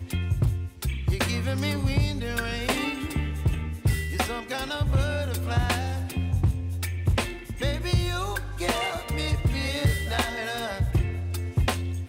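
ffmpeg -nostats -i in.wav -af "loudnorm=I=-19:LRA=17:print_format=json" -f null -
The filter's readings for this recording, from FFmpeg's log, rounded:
"input_i" : "-27.4",
"input_tp" : "-12.7",
"input_lra" : "0.6",
"input_thresh" : "-37.4",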